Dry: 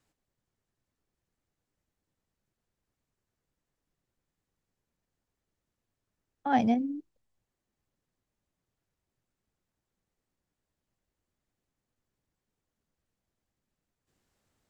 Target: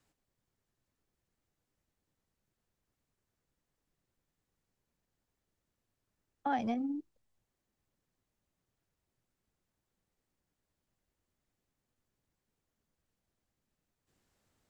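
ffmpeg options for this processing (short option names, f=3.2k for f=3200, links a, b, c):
-filter_complex "[0:a]acrossover=split=370[a][b];[a]asoftclip=type=tanh:threshold=-29.5dB[c];[c][b]amix=inputs=2:normalize=0,acompressor=threshold=-29dB:ratio=10"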